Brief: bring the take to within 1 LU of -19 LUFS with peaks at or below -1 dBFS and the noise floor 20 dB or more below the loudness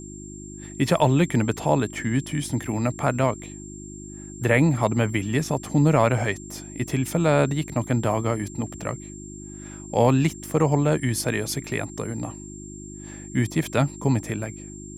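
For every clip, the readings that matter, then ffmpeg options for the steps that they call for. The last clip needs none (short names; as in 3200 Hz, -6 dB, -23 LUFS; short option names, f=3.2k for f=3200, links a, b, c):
hum 50 Hz; harmonics up to 350 Hz; hum level -38 dBFS; steady tone 7400 Hz; tone level -42 dBFS; loudness -23.5 LUFS; peak -5.5 dBFS; loudness target -19.0 LUFS
-> -af "bandreject=f=50:t=h:w=4,bandreject=f=100:t=h:w=4,bandreject=f=150:t=h:w=4,bandreject=f=200:t=h:w=4,bandreject=f=250:t=h:w=4,bandreject=f=300:t=h:w=4,bandreject=f=350:t=h:w=4"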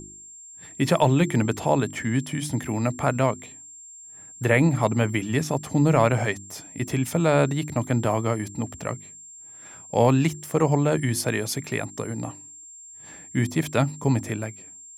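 hum none; steady tone 7400 Hz; tone level -42 dBFS
-> -af "bandreject=f=7.4k:w=30"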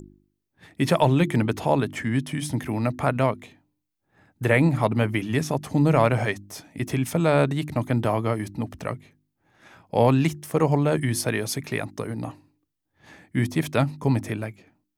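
steady tone none; loudness -24.0 LUFS; peak -5.0 dBFS; loudness target -19.0 LUFS
-> -af "volume=5dB,alimiter=limit=-1dB:level=0:latency=1"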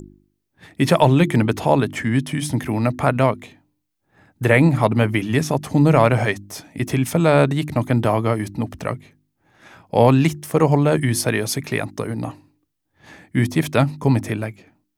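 loudness -19.0 LUFS; peak -1.0 dBFS; noise floor -74 dBFS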